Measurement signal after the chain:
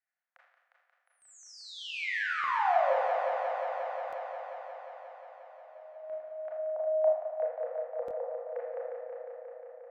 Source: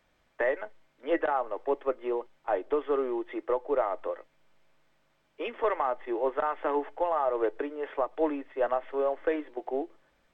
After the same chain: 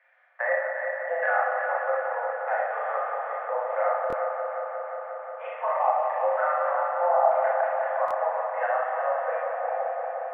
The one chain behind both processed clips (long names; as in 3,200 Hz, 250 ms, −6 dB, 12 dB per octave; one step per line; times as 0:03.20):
Chebyshev high-pass with heavy ripple 510 Hz, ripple 9 dB
auto-filter low-pass saw down 0.82 Hz 780–1,800 Hz
on a send: echo machine with several playback heads 178 ms, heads first and second, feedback 72%, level −9 dB
on the sum: four-comb reverb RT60 0.77 s, combs from 26 ms, DRR −3.5 dB
in parallel at −2.5 dB: downward compressor, threshold −37 dBFS
on the sum: buffer that repeats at 0:04.08/0:08.06, samples 1,024, times 1